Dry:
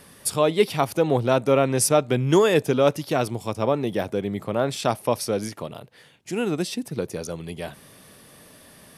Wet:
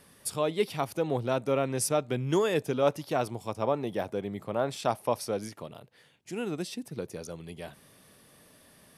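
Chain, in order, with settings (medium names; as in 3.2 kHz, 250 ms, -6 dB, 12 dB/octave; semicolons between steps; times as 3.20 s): 2.82–5.37 s: dynamic bell 840 Hz, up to +5 dB, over -34 dBFS, Q 1; trim -8.5 dB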